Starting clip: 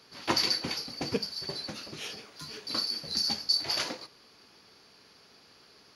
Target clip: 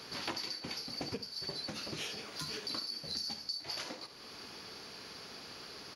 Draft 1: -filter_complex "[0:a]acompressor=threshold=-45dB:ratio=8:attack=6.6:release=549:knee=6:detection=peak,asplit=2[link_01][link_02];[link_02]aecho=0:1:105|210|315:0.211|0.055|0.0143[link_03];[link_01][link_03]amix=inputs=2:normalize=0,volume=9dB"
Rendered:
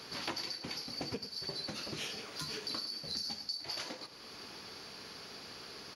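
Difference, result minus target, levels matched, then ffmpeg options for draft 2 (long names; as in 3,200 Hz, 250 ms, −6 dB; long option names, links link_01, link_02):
echo 34 ms late
-filter_complex "[0:a]acompressor=threshold=-45dB:ratio=8:attack=6.6:release=549:knee=6:detection=peak,asplit=2[link_01][link_02];[link_02]aecho=0:1:71|142|213:0.211|0.055|0.0143[link_03];[link_01][link_03]amix=inputs=2:normalize=0,volume=9dB"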